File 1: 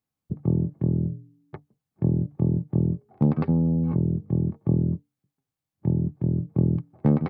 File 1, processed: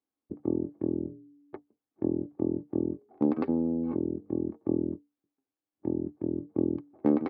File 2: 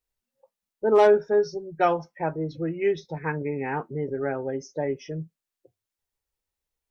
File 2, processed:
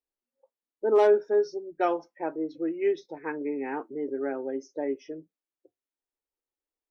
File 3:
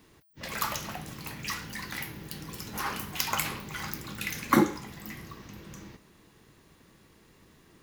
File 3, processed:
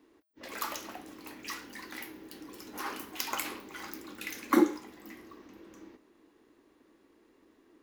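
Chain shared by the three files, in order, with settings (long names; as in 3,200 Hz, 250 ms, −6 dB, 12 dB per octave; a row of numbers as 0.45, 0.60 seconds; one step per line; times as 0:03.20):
low shelf with overshoot 210 Hz −11 dB, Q 3
one half of a high-frequency compander decoder only
normalise the peak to −12 dBFS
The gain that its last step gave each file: −3.0, −6.0, −5.0 decibels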